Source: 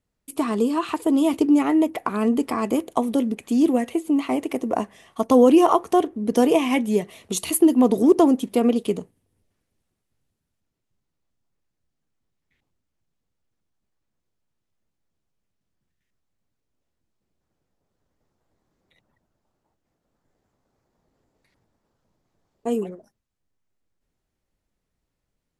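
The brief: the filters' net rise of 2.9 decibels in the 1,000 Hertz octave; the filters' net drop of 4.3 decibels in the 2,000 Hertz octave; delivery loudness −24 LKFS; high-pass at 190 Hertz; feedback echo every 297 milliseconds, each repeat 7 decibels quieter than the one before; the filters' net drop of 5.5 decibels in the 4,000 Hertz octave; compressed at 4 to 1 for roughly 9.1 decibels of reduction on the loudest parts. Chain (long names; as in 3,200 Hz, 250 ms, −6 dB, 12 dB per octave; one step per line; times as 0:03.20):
high-pass filter 190 Hz
parametric band 1,000 Hz +5 dB
parametric band 2,000 Hz −5 dB
parametric band 4,000 Hz −6 dB
downward compressor 4 to 1, threshold −21 dBFS
repeating echo 297 ms, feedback 45%, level −7 dB
level +1.5 dB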